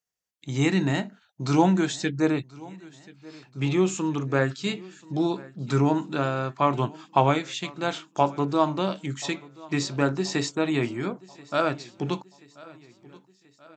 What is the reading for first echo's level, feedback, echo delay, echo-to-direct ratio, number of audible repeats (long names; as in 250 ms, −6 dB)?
−22.0 dB, 52%, 1,032 ms, −20.5 dB, 3